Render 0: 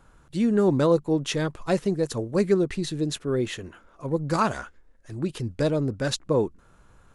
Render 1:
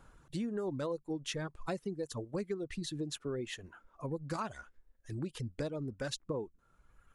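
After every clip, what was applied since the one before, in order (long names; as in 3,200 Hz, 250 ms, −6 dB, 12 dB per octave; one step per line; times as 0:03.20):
reverb reduction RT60 1.5 s
downward compressor 4 to 1, threshold −33 dBFS, peak gain reduction 14.5 dB
level −3 dB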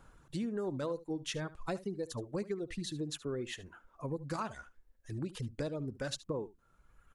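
single-tap delay 73 ms −17.5 dB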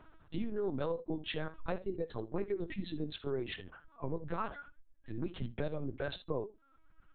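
tape wow and flutter 26 cents
convolution reverb, pre-delay 3 ms, DRR 12.5 dB
linear-prediction vocoder at 8 kHz pitch kept
level +1 dB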